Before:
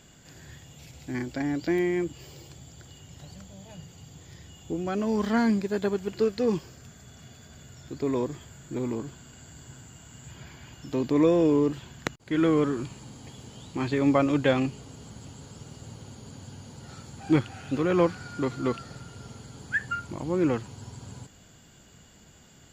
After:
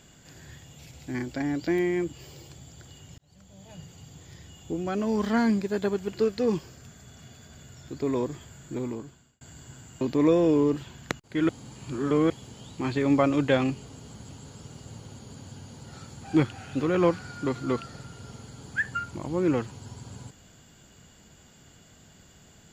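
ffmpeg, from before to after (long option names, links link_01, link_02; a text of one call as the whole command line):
ffmpeg -i in.wav -filter_complex "[0:a]asplit=6[link_01][link_02][link_03][link_04][link_05][link_06];[link_01]atrim=end=3.18,asetpts=PTS-STARTPTS,afade=type=out:start_time=3.176:duration=0.004:curve=hsin[link_07];[link_02]atrim=start=3.18:end=9.41,asetpts=PTS-STARTPTS,afade=type=in:duration=0.62,afade=type=out:start_time=5.53:duration=0.7[link_08];[link_03]atrim=start=9.41:end=10.012,asetpts=PTS-STARTPTS,afade=type=in:duration=0.004:curve=hsin[link_09];[link_04]atrim=start=10.968:end=12.452[link_10];[link_05]atrim=start=12.448:end=13.262,asetpts=PTS-STARTPTS,areverse[link_11];[link_06]atrim=start=13.258[link_12];[link_07][link_08][link_09]concat=n=3:v=0:a=1[link_13];[link_13][link_10]acrossfade=duration=0.004:curve1=hsin:curve2=hsin[link_14];[link_14][link_11]acrossfade=duration=0.004:curve1=hsin:curve2=hsin[link_15];[link_15][link_12]acrossfade=duration=0.004:curve1=hsin:curve2=hsin" out.wav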